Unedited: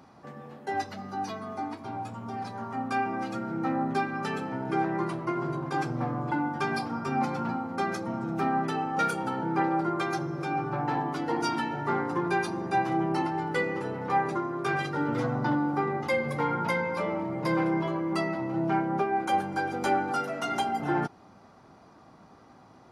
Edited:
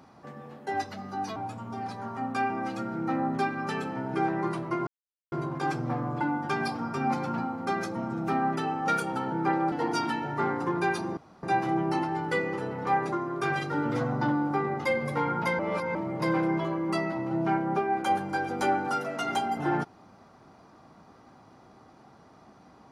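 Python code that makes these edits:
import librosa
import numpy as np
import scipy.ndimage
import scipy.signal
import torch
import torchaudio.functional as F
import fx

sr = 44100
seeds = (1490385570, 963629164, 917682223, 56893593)

y = fx.edit(x, sr, fx.cut(start_s=1.36, length_s=0.56),
    fx.insert_silence(at_s=5.43, length_s=0.45),
    fx.cut(start_s=9.83, length_s=1.38),
    fx.insert_room_tone(at_s=12.66, length_s=0.26),
    fx.reverse_span(start_s=16.82, length_s=0.36), tone=tone)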